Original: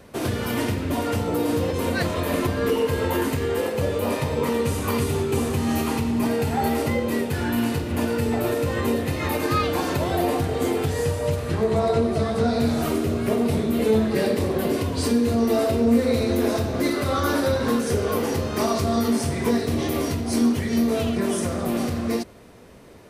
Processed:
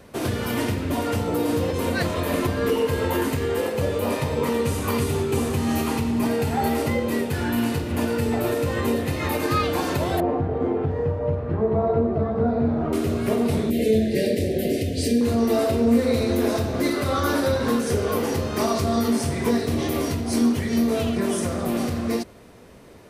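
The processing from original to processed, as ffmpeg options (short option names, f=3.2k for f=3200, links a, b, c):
-filter_complex "[0:a]asettb=1/sr,asplit=3[a][b][c];[a]atrim=end=10.204[d];[b]atrim=start=10.2:end=12.93,asetpts=PTS-STARTPTS,afade=t=in:d=0.004:c=qsin,afade=t=out:st=2.726:d=0.004:c=qsin,lowpass=1.1k[e];[c]atrim=start=12.926[f];[d][e]acrossfade=d=0.004:c1=hsin:c2=qsin[g];[g][f]acrossfade=d=0.004:c1=qsin:c2=hsin,asettb=1/sr,asplit=3[h][i][j];[h]atrim=end=13.704[k];[i]atrim=start=13.7:end=15.21,asetpts=PTS-STARTPTS,afade=t=in:d=0.004:c=qsin,afade=t=out:st=1.506:d=0.004:c=qsin,asuperstop=centerf=1100:order=8:qfactor=1[l];[j]atrim=start=15.206[m];[k][l]acrossfade=d=0.004:c1=hsin:c2=qsin[n];[n][m]acrossfade=d=0.004:c1=qsin:c2=hsin"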